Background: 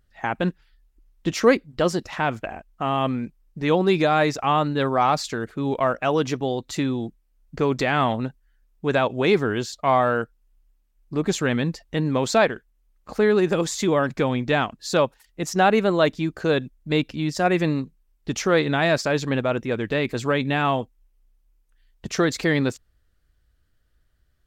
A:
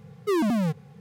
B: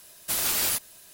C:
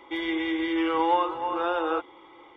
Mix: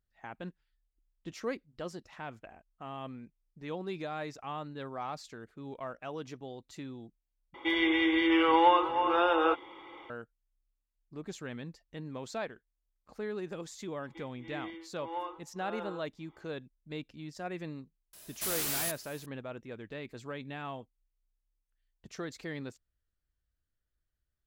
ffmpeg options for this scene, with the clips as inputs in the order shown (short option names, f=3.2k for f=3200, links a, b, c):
-filter_complex "[3:a]asplit=2[a][b];[0:a]volume=-19dB[c];[a]equalizer=f=2.6k:w=1.1:g=4[d];[b]tremolo=f=1.7:d=0.98[e];[2:a]asoftclip=type=hard:threshold=-28.5dB[f];[c]asplit=2[g][h];[g]atrim=end=7.544[i];[d]atrim=end=2.56[j];[h]atrim=start=10.096[k];[e]atrim=end=2.56,asetpts=PTS-STARTPTS,volume=-14dB,afade=t=in:d=0.004:c=hsin,afade=t=out:st=2.556:d=0.004:c=hsin,adelay=14040[l];[f]atrim=end=1.13,asetpts=PTS-STARTPTS,volume=-3dB,afade=t=in:d=0.004:c=hsin,afade=t=out:st=1.126:d=0.004:c=hsin,adelay=18130[m];[i][j]acrossfade=d=0.004:c1=hsin:c2=hsin[n];[n][k]acrossfade=d=0.004:c1=hsin:c2=hsin[o];[o][l][m]amix=inputs=3:normalize=0"